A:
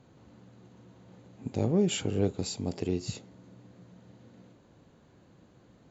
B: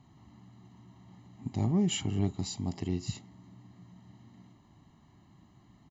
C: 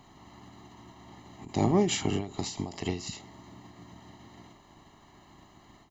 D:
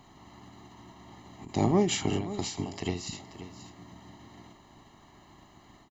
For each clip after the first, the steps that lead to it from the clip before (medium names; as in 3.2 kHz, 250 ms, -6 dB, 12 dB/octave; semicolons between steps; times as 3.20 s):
comb 1 ms, depth 93%; trim -4 dB
spectral peaks clipped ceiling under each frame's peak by 15 dB; endings held to a fixed fall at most 120 dB/s; trim +4 dB
delay 531 ms -13.5 dB